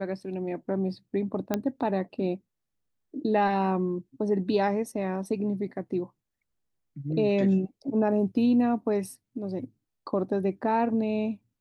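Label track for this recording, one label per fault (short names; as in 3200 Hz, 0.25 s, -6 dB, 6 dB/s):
1.540000	1.540000	pop -12 dBFS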